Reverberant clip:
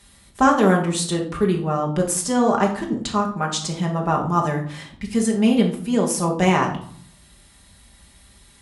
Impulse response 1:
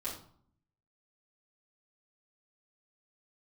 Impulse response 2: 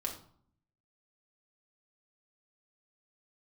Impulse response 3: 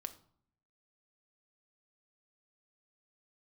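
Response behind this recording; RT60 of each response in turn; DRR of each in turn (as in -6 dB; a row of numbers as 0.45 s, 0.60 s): 2; 0.55 s, 0.55 s, 0.60 s; -9.0 dB, -0.5 dB, 8.5 dB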